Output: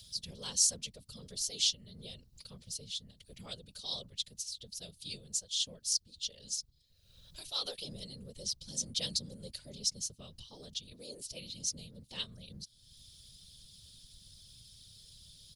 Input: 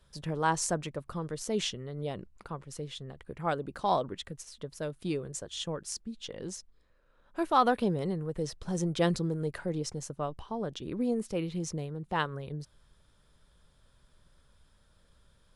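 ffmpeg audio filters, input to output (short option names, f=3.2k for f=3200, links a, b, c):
-af "firequalizer=gain_entry='entry(120,0);entry(300,-29);entry(480,-8);entry(740,-22);entry(1500,-22);entry(3000,-2);entry(4300,5);entry(7700,-7)':delay=0.05:min_phase=1,afftfilt=real='hypot(re,im)*cos(2*PI*random(0))':imag='hypot(re,im)*sin(2*PI*random(1))':win_size=512:overlap=0.75,crystalizer=i=8:c=0,acompressor=mode=upward:threshold=-42dB:ratio=2.5,volume=-2.5dB"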